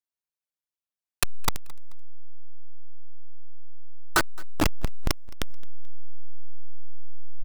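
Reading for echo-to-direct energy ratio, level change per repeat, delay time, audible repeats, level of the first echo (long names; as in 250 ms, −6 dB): −23.0 dB, −9.0 dB, 217 ms, 2, −23.5 dB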